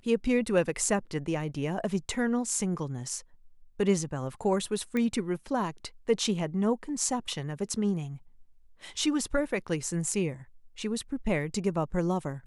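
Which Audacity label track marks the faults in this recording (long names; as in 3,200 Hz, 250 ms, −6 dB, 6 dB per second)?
4.970000	4.970000	click −19 dBFS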